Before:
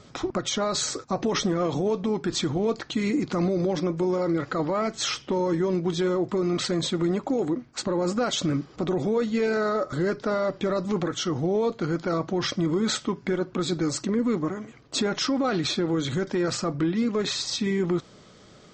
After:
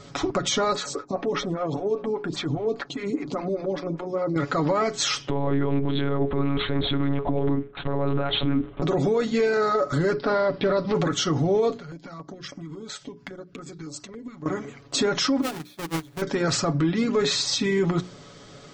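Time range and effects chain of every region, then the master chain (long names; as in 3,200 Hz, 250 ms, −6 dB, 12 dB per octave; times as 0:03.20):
0:00.73–0:04.36: high-shelf EQ 5,800 Hz −9.5 dB + downward compressor 3 to 1, threshold −26 dBFS + phaser with staggered stages 5 Hz
0:05.29–0:08.82: one-pitch LPC vocoder at 8 kHz 140 Hz + one half of a high-frequency compander decoder only
0:10.13–0:10.95: Butterworth low-pass 5,300 Hz 96 dB per octave + highs frequency-modulated by the lows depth 0.17 ms
0:11.78–0:14.46: transient designer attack +3 dB, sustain −9 dB + downward compressor 8 to 1, threshold −38 dBFS + notch on a step sequencer 7.2 Hz 290–3,800 Hz
0:15.41–0:16.22: each half-wave held at its own peak + noise gate −19 dBFS, range −32 dB
whole clip: mains-hum notches 60/120/180/240/300/360/420 Hz; comb filter 7.1 ms, depth 54%; brickwall limiter −19 dBFS; level +4.5 dB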